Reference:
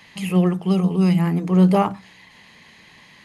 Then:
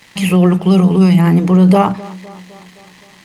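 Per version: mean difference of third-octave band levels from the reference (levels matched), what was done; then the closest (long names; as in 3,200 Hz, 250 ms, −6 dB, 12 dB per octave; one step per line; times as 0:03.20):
3.0 dB: dead-zone distortion −49.5 dBFS
tape delay 257 ms, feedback 66%, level −23 dB
boost into a limiter +13 dB
level −1.5 dB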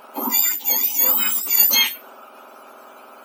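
13.5 dB: frequency axis turned over on the octave scale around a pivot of 1,600 Hz
in parallel at −1 dB: brickwall limiter −15.5 dBFS, peak gain reduction 8 dB
on the sum: low-shelf EQ 250 Hz −8 dB
level +1.5 dB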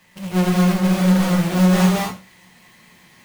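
8.0 dB: each half-wave held at its own peak
tuned comb filter 180 Hz, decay 0.22 s, harmonics all, mix 70%
reverb whose tail is shaped and stops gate 260 ms rising, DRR −4.5 dB
level −4 dB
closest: first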